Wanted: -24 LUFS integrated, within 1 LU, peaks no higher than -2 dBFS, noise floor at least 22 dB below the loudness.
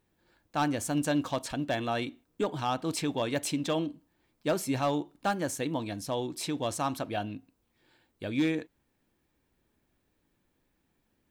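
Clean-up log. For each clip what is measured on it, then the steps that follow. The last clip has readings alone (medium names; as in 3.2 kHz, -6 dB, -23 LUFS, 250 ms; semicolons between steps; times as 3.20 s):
clipped samples 0.2%; clipping level -20.5 dBFS; loudness -32.0 LUFS; peak level -20.5 dBFS; loudness target -24.0 LUFS
-> clip repair -20.5 dBFS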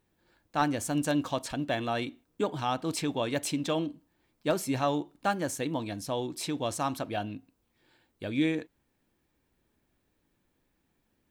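clipped samples 0.0%; loudness -31.5 LUFS; peak level -11.5 dBFS; loudness target -24.0 LUFS
-> trim +7.5 dB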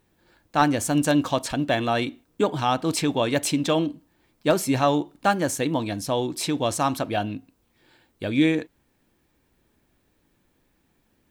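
loudness -24.0 LUFS; peak level -4.0 dBFS; noise floor -68 dBFS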